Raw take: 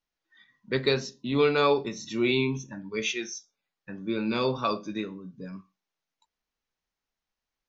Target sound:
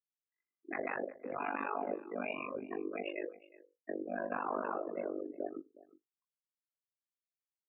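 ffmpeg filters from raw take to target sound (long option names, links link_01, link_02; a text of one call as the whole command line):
ffmpeg -i in.wav -af "lowpass=frequency=1700:width=0.5412,lowpass=frequency=1700:width=1.3066,bandreject=frequency=72.06:width_type=h:width=4,bandreject=frequency=144.12:width_type=h:width=4,bandreject=frequency=216.18:width_type=h:width=4,bandreject=frequency=288.24:width_type=h:width=4,bandreject=frequency=360.3:width_type=h:width=4,bandreject=frequency=432.36:width_type=h:width=4,bandreject=frequency=504.42:width_type=h:width=4,bandreject=frequency=576.48:width_type=h:width=4,bandreject=frequency=648.54:width_type=h:width=4,bandreject=frequency=720.6:width_type=h:width=4,afftdn=noise_reduction=33:noise_floor=-40,afftfilt=real='re*lt(hypot(re,im),0.112)':imag='im*lt(hypot(re,im),0.112)':win_size=1024:overlap=0.75,equalizer=frequency=490:width_type=o:width=1.3:gain=4.5,alimiter=level_in=6.5dB:limit=-24dB:level=0:latency=1:release=11,volume=-6.5dB,afreqshift=130,tremolo=f=49:d=0.974,aecho=1:1:363:0.1,volume=5.5dB" out.wav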